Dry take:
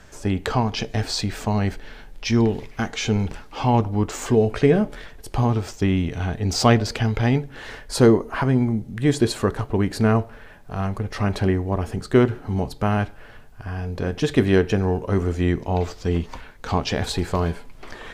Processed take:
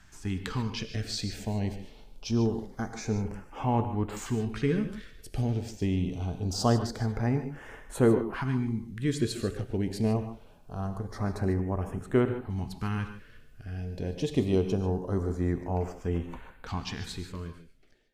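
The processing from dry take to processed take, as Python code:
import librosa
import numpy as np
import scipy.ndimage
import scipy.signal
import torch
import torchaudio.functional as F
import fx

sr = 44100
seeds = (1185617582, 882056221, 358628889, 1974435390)

y = fx.fade_out_tail(x, sr, length_s=1.64)
y = fx.filter_lfo_notch(y, sr, shape='saw_up', hz=0.24, low_hz=480.0, high_hz=6200.0, q=0.71)
y = fx.rev_gated(y, sr, seeds[0], gate_ms=170, shape='rising', drr_db=9.0)
y = F.gain(torch.from_numpy(y), -8.0).numpy()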